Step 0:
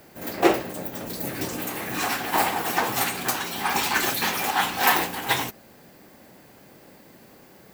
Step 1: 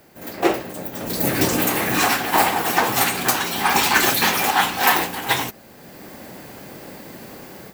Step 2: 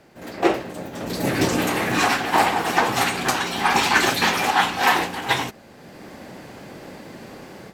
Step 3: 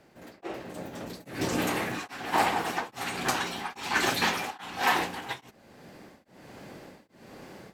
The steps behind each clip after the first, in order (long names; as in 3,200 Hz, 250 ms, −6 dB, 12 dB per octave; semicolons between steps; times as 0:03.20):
automatic gain control gain up to 13 dB; level −1 dB
high-frequency loss of the air 54 metres
tremolo along a rectified sine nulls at 1.2 Hz; level −6 dB